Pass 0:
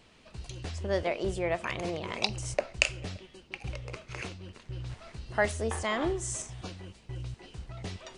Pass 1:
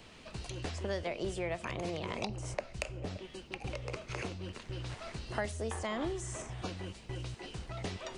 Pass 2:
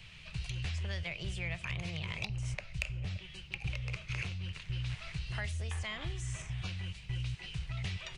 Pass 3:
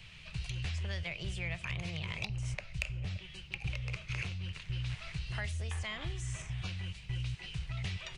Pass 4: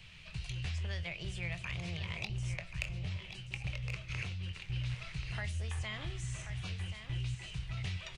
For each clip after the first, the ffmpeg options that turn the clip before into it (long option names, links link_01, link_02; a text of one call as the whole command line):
ffmpeg -i in.wav -filter_complex "[0:a]acrossover=split=220|1100|2600[link_01][link_02][link_03][link_04];[link_01]acompressor=threshold=-47dB:ratio=4[link_05];[link_02]acompressor=threshold=-43dB:ratio=4[link_06];[link_03]acompressor=threshold=-54dB:ratio=4[link_07];[link_04]acompressor=threshold=-53dB:ratio=4[link_08];[link_05][link_06][link_07][link_08]amix=inputs=4:normalize=0,volume=5dB" out.wav
ffmpeg -i in.wav -filter_complex "[0:a]firequalizer=gain_entry='entry(160,0);entry(230,-21);entry(2400,1);entry(4700,-6);entry(7900,-9)':delay=0.05:min_phase=1,asplit=2[link_01][link_02];[link_02]asoftclip=type=tanh:threshold=-34dB,volume=-3.5dB[link_03];[link_01][link_03]amix=inputs=2:normalize=0,volume=1dB" out.wav
ffmpeg -i in.wav -af anull out.wav
ffmpeg -i in.wav -filter_complex "[0:a]asplit=2[link_01][link_02];[link_02]adelay=23,volume=-12dB[link_03];[link_01][link_03]amix=inputs=2:normalize=0,asplit=2[link_04][link_05];[link_05]aecho=0:1:1083:0.335[link_06];[link_04][link_06]amix=inputs=2:normalize=0,volume=-2dB" out.wav